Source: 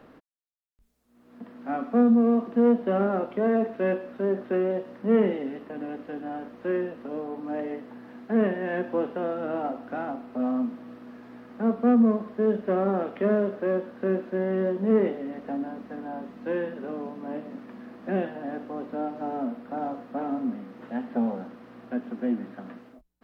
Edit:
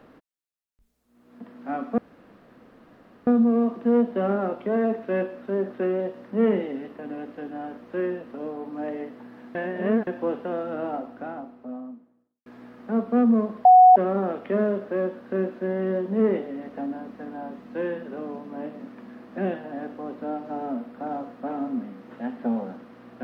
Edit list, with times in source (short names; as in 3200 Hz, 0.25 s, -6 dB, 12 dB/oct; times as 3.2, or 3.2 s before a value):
1.98 insert room tone 1.29 s
8.26–8.78 reverse
9.41–11.17 studio fade out
12.36–12.67 bleep 737 Hz -8 dBFS